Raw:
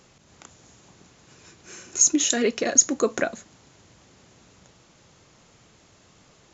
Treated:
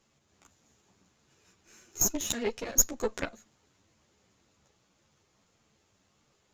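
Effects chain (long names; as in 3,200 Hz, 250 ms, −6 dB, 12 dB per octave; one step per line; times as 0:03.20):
gain on one half-wave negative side −7 dB
harmonic generator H 7 −21 dB, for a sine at −2 dBFS
string-ensemble chorus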